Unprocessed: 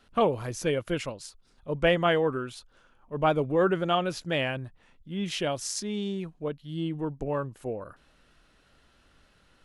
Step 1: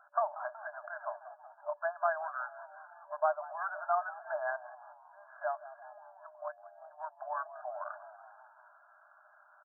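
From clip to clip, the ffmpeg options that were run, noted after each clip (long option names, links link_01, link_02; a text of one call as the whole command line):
ffmpeg -i in.wav -filter_complex "[0:a]acompressor=threshold=-33dB:ratio=5,asplit=6[link_01][link_02][link_03][link_04][link_05][link_06];[link_02]adelay=186,afreqshift=100,volume=-18dB[link_07];[link_03]adelay=372,afreqshift=200,volume=-22.4dB[link_08];[link_04]adelay=558,afreqshift=300,volume=-26.9dB[link_09];[link_05]adelay=744,afreqshift=400,volume=-31.3dB[link_10];[link_06]adelay=930,afreqshift=500,volume=-35.7dB[link_11];[link_01][link_07][link_08][link_09][link_10][link_11]amix=inputs=6:normalize=0,afftfilt=real='re*between(b*sr/4096,590,1700)':imag='im*between(b*sr/4096,590,1700)':win_size=4096:overlap=0.75,volume=7dB" out.wav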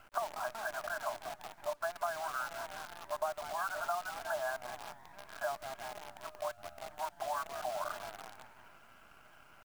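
ffmpeg -i in.wav -af "acompressor=threshold=-40dB:ratio=5,acrusher=bits=9:dc=4:mix=0:aa=0.000001,volume=6dB" out.wav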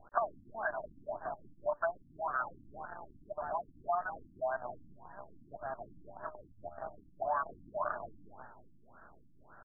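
ffmpeg -i in.wav -af "afftfilt=real='re*lt(b*sr/1024,310*pow(1900/310,0.5+0.5*sin(2*PI*1.8*pts/sr)))':imag='im*lt(b*sr/1024,310*pow(1900/310,0.5+0.5*sin(2*PI*1.8*pts/sr)))':win_size=1024:overlap=0.75,volume=4dB" out.wav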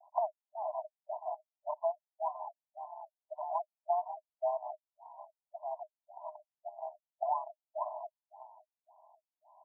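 ffmpeg -i in.wav -af "asuperpass=centerf=800:order=20:qfactor=1.9,volume=2.5dB" out.wav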